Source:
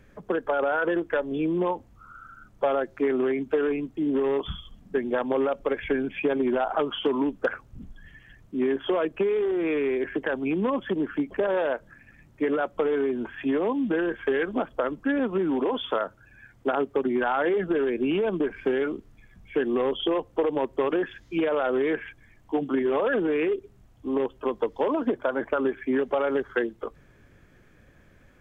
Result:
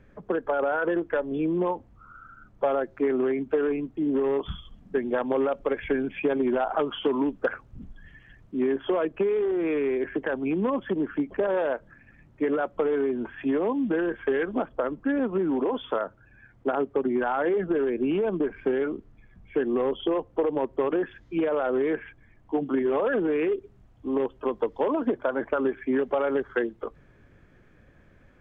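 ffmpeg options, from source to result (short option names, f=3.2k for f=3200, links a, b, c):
-af "asetnsamples=n=441:p=0,asendcmd='4.49 lowpass f 3000;8.62 lowpass f 2100;14.66 lowpass f 1500;22.66 lowpass f 2000;23.43 lowpass f 2600',lowpass=f=1.9k:p=1"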